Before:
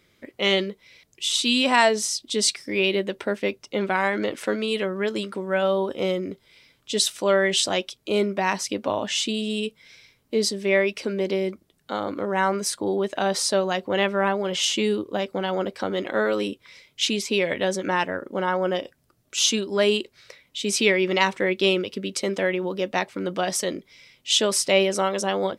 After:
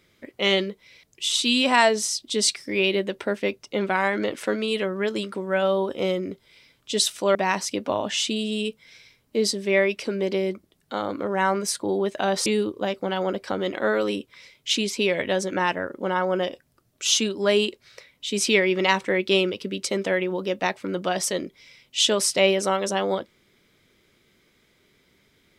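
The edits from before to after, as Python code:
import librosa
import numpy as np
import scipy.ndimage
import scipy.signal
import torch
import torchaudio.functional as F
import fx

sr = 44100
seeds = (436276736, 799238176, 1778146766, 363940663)

y = fx.edit(x, sr, fx.cut(start_s=7.35, length_s=0.98),
    fx.cut(start_s=13.44, length_s=1.34), tone=tone)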